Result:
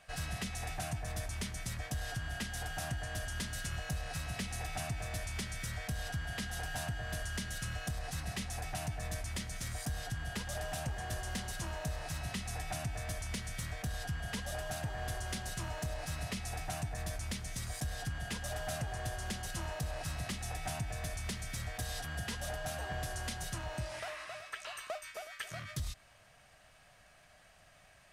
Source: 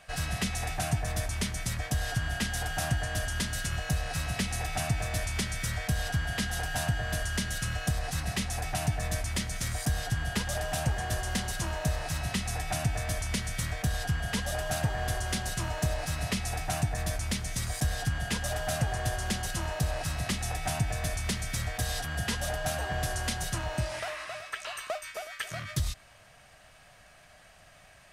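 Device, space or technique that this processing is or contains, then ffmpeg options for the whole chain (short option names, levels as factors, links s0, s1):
soft clipper into limiter: -af "asoftclip=type=tanh:threshold=0.112,alimiter=limit=0.0708:level=0:latency=1:release=275,volume=0.501"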